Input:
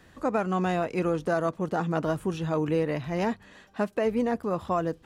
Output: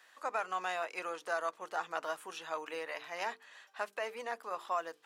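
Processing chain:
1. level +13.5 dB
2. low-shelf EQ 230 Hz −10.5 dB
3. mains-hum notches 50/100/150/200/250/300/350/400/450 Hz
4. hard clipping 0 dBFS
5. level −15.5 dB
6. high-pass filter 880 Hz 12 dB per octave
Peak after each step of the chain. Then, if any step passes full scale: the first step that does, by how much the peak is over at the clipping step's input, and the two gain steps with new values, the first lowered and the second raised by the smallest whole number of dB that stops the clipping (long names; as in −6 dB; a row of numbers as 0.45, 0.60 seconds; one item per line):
−2.0, −2.0, −2.0, −2.0, −17.5, −21.5 dBFS
no step passes full scale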